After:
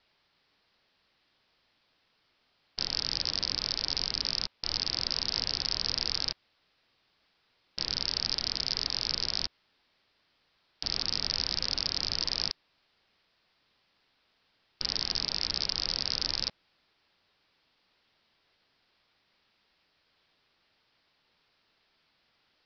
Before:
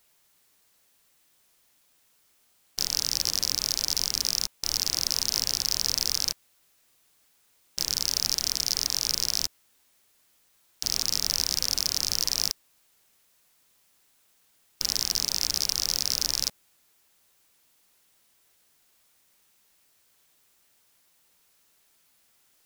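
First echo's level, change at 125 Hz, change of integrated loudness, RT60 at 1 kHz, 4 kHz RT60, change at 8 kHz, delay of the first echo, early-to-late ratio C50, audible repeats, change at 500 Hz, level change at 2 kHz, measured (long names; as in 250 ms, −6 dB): no echo audible, 0.0 dB, −4.5 dB, no reverb audible, no reverb audible, −17.0 dB, no echo audible, no reverb audible, no echo audible, 0.0 dB, 0.0 dB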